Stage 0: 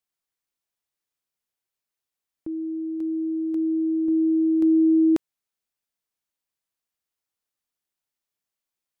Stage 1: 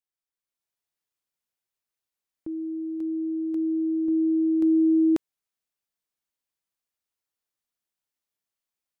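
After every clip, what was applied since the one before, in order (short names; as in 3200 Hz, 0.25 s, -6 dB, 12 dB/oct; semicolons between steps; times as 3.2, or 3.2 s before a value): AGC gain up to 7 dB; gain -9 dB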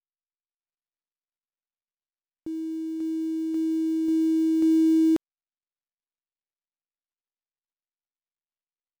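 switching dead time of 0.087 ms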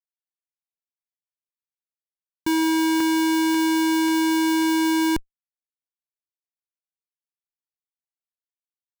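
Schmitt trigger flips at -28.5 dBFS; gain +8.5 dB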